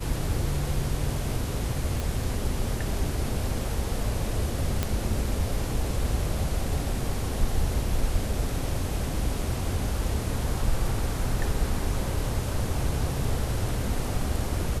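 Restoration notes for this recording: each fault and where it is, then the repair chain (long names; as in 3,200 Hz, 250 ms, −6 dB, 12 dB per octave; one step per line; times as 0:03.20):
0:02.00: click
0:04.83: click −11 dBFS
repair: click removal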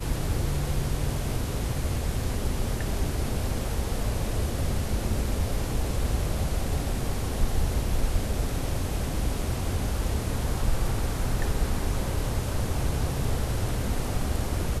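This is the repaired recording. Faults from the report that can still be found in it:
none of them is left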